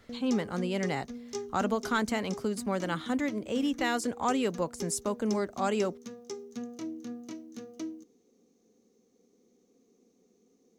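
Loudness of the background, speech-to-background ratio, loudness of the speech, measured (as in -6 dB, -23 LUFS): -42.0 LUFS, 10.5 dB, -31.5 LUFS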